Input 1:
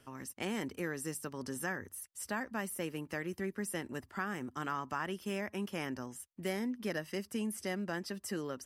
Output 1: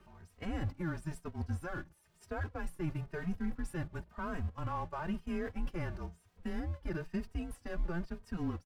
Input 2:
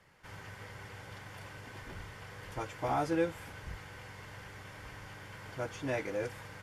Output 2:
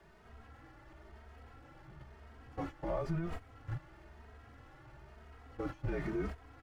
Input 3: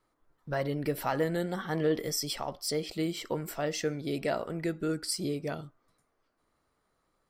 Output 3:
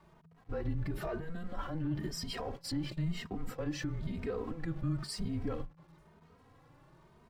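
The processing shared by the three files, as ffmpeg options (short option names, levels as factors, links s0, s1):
-filter_complex "[0:a]aeval=exprs='val(0)+0.5*0.00841*sgn(val(0))':c=same,agate=range=0.112:threshold=0.0141:ratio=16:detection=peak,lowpass=f=1000:p=1,asplit=2[s0][s1];[s1]acompressor=threshold=0.00562:ratio=6,volume=1[s2];[s0][s2]amix=inputs=2:normalize=0,alimiter=level_in=1.78:limit=0.0631:level=0:latency=1:release=77,volume=0.562,afreqshift=-170,asoftclip=type=tanh:threshold=0.0398,asplit=2[s3][s4];[s4]adelay=2.9,afreqshift=1[s5];[s3][s5]amix=inputs=2:normalize=1,volume=1.78"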